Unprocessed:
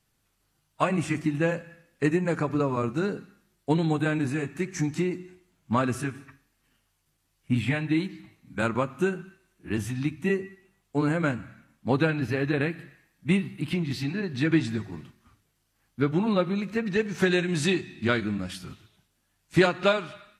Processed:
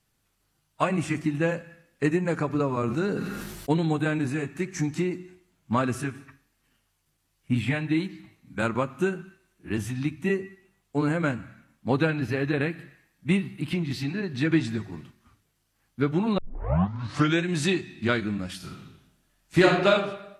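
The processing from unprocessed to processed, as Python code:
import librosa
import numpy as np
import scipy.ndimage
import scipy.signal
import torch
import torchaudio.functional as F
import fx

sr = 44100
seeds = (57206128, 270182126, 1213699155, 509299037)

y = fx.sustainer(x, sr, db_per_s=31.0, at=(2.81, 3.7))
y = fx.reverb_throw(y, sr, start_s=18.56, length_s=1.33, rt60_s=0.8, drr_db=0.5)
y = fx.edit(y, sr, fx.tape_start(start_s=16.38, length_s=1.05), tone=tone)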